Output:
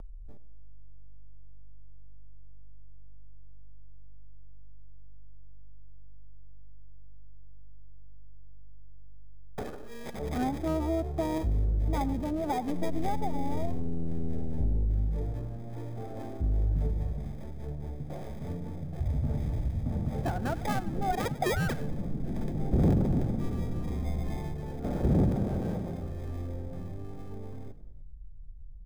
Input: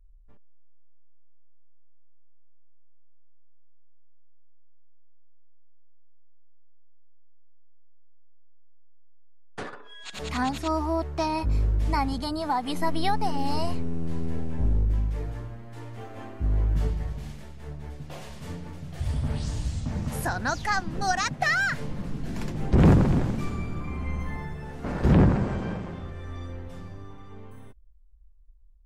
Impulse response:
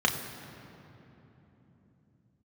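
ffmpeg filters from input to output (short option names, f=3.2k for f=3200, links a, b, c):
-filter_complex "[0:a]lowpass=3.9k,asplit=4[a][b][c][d];[b]adelay=99,afreqshift=49,volume=-18dB[e];[c]adelay=198,afreqshift=98,volume=-25.7dB[f];[d]adelay=297,afreqshift=147,volume=-33.5dB[g];[a][e][f][g]amix=inputs=4:normalize=0,acrossover=split=510|1100[h][i][j];[j]acrusher=samples=31:mix=1:aa=0.000001[k];[h][i][k]amix=inputs=3:normalize=0,acompressor=mode=upward:threshold=-32dB:ratio=2.5,bandreject=f=1k:w=5.2,acompressor=threshold=-26dB:ratio=2"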